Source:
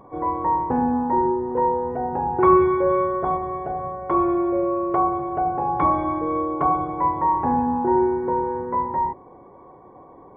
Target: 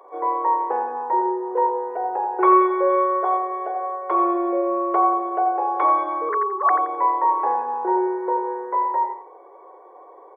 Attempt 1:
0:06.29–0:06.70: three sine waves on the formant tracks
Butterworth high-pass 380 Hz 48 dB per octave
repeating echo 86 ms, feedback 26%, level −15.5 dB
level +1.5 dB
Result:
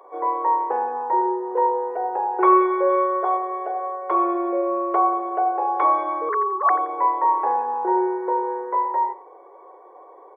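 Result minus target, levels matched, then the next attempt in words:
echo-to-direct −6.5 dB
0:06.29–0:06.70: three sine waves on the formant tracks
Butterworth high-pass 380 Hz 48 dB per octave
repeating echo 86 ms, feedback 26%, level −9 dB
level +1.5 dB

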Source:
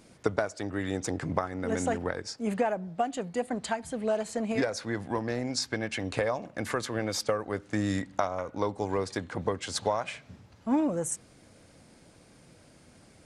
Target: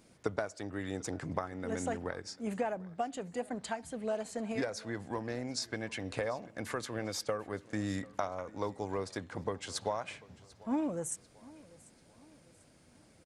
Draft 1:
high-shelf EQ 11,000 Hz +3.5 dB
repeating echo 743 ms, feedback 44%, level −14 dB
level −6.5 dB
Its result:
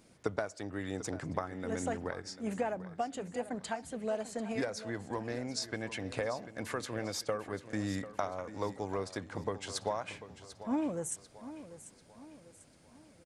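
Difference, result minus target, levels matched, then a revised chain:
echo-to-direct +8 dB
high-shelf EQ 11,000 Hz +3.5 dB
repeating echo 743 ms, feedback 44%, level −22 dB
level −6.5 dB

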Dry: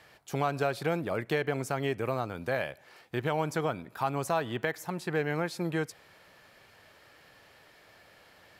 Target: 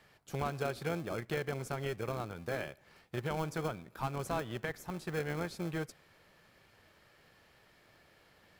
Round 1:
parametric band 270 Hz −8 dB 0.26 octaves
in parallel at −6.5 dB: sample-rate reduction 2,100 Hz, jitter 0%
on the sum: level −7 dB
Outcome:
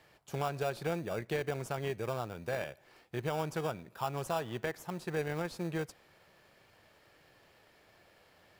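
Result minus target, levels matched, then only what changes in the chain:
sample-rate reduction: distortion −14 dB
change: sample-rate reduction 950 Hz, jitter 0%

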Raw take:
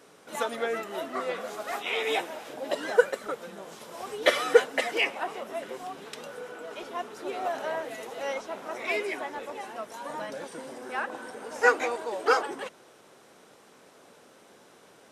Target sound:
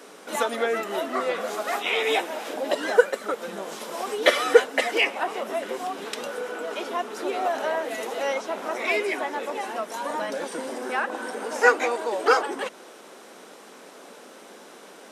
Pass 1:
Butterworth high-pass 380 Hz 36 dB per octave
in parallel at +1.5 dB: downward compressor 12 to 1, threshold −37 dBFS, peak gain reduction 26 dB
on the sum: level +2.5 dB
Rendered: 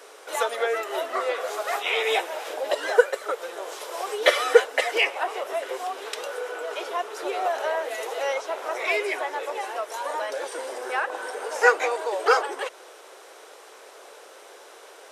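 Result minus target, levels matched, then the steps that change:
250 Hz band −8.5 dB
change: Butterworth high-pass 190 Hz 36 dB per octave

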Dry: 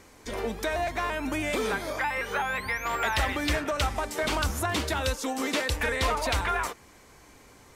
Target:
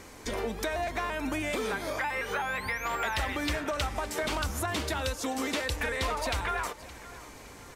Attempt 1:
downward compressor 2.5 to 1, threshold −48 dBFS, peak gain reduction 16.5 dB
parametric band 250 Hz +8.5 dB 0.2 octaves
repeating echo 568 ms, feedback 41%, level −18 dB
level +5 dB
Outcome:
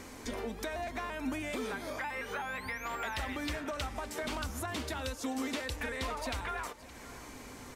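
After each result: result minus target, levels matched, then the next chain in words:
downward compressor: peak gain reduction +6.5 dB; 250 Hz band +3.5 dB
downward compressor 2.5 to 1, threshold −37.5 dBFS, peak gain reduction 10.5 dB
parametric band 250 Hz +8.5 dB 0.2 octaves
repeating echo 568 ms, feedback 41%, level −18 dB
level +5 dB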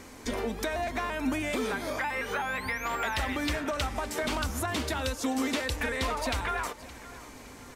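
250 Hz band +3.0 dB
downward compressor 2.5 to 1, threshold −37.5 dBFS, peak gain reduction 10.5 dB
repeating echo 568 ms, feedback 41%, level −18 dB
level +5 dB

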